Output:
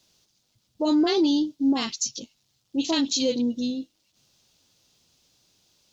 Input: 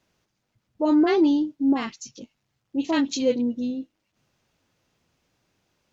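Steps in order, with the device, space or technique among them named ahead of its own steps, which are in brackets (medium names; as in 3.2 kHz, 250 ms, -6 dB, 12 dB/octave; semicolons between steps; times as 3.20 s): over-bright horn tweeter (resonant high shelf 2.8 kHz +11 dB, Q 1.5; peak limiter -15 dBFS, peak gain reduction 11 dB)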